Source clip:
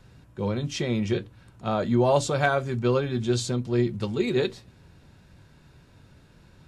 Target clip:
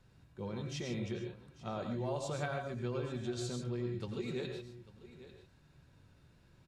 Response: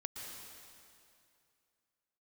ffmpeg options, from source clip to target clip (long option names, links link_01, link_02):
-filter_complex "[0:a]aecho=1:1:844:0.112,acompressor=threshold=-23dB:ratio=6[link_01];[1:a]atrim=start_sample=2205,afade=type=out:start_time=0.25:duration=0.01,atrim=end_sample=11466,asetrate=57330,aresample=44100[link_02];[link_01][link_02]afir=irnorm=-1:irlink=0,volume=-5.5dB"